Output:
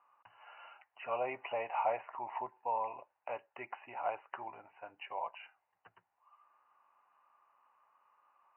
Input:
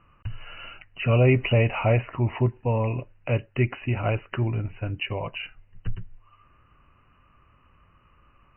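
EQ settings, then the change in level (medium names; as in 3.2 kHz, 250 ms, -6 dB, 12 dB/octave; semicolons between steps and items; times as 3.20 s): ladder band-pass 930 Hz, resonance 65%; band-stop 1.3 kHz, Q 22; +2.5 dB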